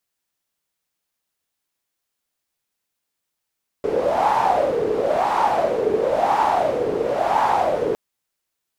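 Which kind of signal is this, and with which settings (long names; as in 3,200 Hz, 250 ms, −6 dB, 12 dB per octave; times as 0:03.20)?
wind from filtered noise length 4.11 s, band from 430 Hz, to 880 Hz, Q 7.3, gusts 4, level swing 3.5 dB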